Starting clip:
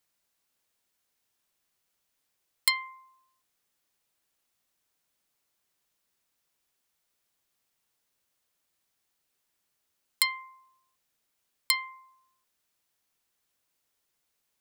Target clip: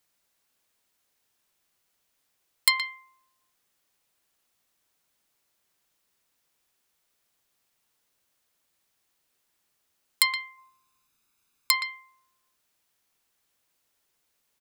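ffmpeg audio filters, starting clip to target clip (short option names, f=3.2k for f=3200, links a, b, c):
-filter_complex "[0:a]asplit=3[a][b][c];[a]afade=t=out:st=10.57:d=0.02[d];[b]aecho=1:1:0.8:0.59,afade=t=in:st=10.57:d=0.02,afade=t=out:st=11.72:d=0.02[e];[c]afade=t=in:st=11.72:d=0.02[f];[d][e][f]amix=inputs=3:normalize=0,asplit=2[g][h];[h]adelay=120,highpass=300,lowpass=3.4k,asoftclip=type=hard:threshold=-14dB,volume=-7dB[i];[g][i]amix=inputs=2:normalize=0,volume=3.5dB"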